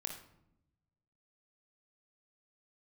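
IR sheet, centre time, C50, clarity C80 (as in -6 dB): 20 ms, 6.5 dB, 10.5 dB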